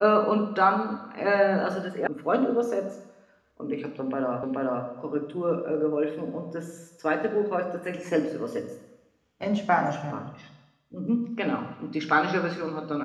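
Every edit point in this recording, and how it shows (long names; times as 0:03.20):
0:02.07: cut off before it has died away
0:04.43: the same again, the last 0.43 s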